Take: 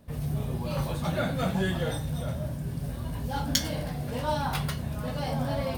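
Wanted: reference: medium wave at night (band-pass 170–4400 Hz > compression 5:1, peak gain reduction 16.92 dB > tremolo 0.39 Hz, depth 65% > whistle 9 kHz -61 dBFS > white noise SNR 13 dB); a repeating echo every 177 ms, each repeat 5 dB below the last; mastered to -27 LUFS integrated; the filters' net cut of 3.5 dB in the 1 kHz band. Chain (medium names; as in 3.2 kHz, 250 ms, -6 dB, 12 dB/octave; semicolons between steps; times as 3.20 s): band-pass 170–4400 Hz; peaking EQ 1 kHz -4.5 dB; feedback delay 177 ms, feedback 56%, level -5 dB; compression 5:1, threshold -42 dBFS; tremolo 0.39 Hz, depth 65%; whistle 9 kHz -61 dBFS; white noise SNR 13 dB; trim +19.5 dB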